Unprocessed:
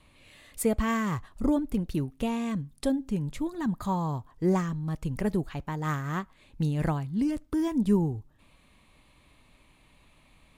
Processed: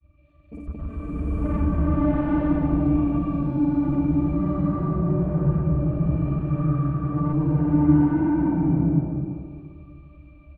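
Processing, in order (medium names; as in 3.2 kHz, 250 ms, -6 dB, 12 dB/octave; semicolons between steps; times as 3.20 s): time reversed locally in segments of 52 ms; granulator 100 ms, grains 20 per s, pitch spread up and down by 0 st; pitch-class resonator D, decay 0.14 s; on a send: tape echo 124 ms, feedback 70%, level -8.5 dB; on the sum: granulator 100 ms, grains 20 per s, pitch spread up and down by 0 st; bass shelf 190 Hz +10.5 dB; in parallel at 0 dB: peak limiter -34 dBFS, peak gain reduction 15 dB; on the sum: comb 3.3 ms, depth 31%; saturation -26.5 dBFS, distortion -12 dB; swelling reverb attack 890 ms, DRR -11.5 dB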